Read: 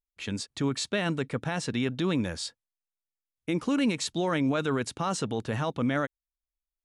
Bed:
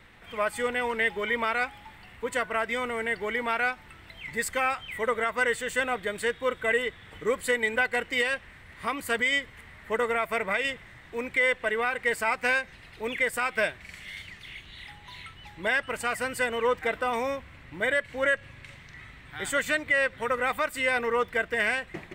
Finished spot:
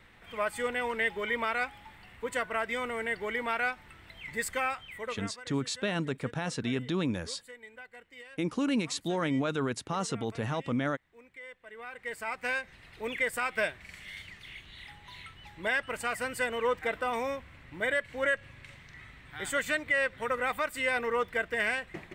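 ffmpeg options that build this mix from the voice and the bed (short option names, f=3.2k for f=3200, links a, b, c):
-filter_complex "[0:a]adelay=4900,volume=-3dB[a];[1:a]volume=16dB,afade=t=out:st=4.54:d=0.88:silence=0.105925,afade=t=in:st=11.66:d=1.33:silence=0.105925[b];[a][b]amix=inputs=2:normalize=0"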